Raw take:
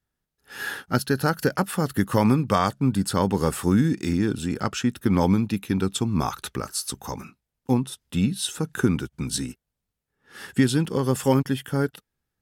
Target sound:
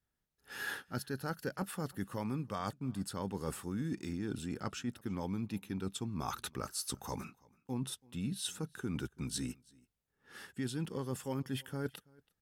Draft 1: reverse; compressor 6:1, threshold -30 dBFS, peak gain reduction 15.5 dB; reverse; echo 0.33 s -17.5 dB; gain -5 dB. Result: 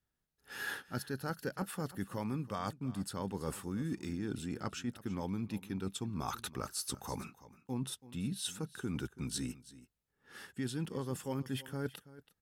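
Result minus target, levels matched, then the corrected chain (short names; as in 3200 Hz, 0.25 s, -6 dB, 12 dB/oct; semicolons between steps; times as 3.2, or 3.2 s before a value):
echo-to-direct +8.5 dB
reverse; compressor 6:1, threshold -30 dBFS, peak gain reduction 15.5 dB; reverse; echo 0.33 s -26 dB; gain -5 dB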